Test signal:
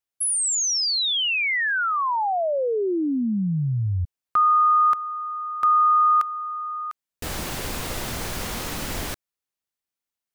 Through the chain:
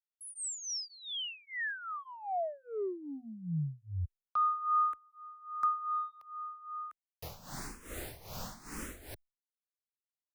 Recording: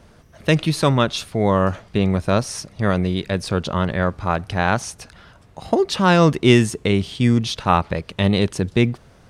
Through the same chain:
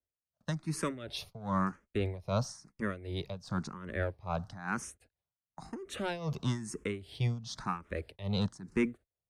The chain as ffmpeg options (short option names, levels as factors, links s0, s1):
-filter_complex "[0:a]agate=range=0.0141:threshold=0.01:ratio=16:release=163:detection=peak,equalizer=f=3100:t=o:w=0.78:g=-6,acrossover=split=240|910[s0][s1][s2];[s1]asoftclip=type=tanh:threshold=0.106[s3];[s0][s3][s2]amix=inputs=3:normalize=0,tremolo=f=2.5:d=0.83,asplit=2[s4][s5];[s5]afreqshift=1[s6];[s4][s6]amix=inputs=2:normalize=1,volume=0.422"